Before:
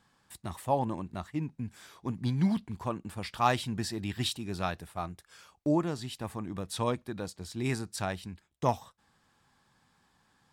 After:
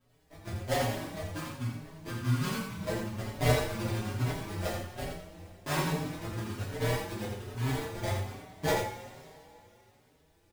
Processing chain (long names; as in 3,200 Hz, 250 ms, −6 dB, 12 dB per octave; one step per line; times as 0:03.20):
sample-rate reduction 1,300 Hz, jitter 20%
multi-voice chorus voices 6, 0.25 Hz, delay 11 ms, depth 1.8 ms
surface crackle 360 per second −61 dBFS
on a send: single-tap delay 84 ms −6 dB
on the sum: coupled-rooms reverb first 0.41 s, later 2.9 s, from −18 dB, DRR −4 dB
barber-pole flanger 5 ms +1.2 Hz